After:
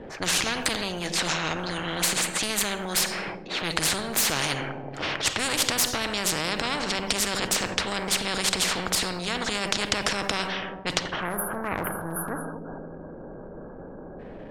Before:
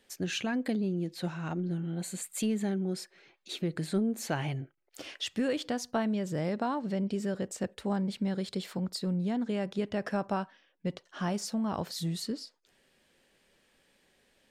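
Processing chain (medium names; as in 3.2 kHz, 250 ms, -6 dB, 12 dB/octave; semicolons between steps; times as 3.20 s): spectral selection erased 11.20–14.19 s, 1.7–9.7 kHz; level-controlled noise filter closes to 710 Hz, open at -28 dBFS; transient shaper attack -11 dB, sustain +5 dB; compression, threshold -33 dBFS, peak gain reduction 7 dB; valve stage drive 25 dB, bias 0.75; on a send: feedback echo behind a low-pass 79 ms, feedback 61%, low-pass 610 Hz, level -13.5 dB; on the sum: simulated room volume 1900 m³, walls furnished, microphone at 0.57 m; loudness maximiser +32 dB; spectrum-flattening compressor 4:1; trim -1 dB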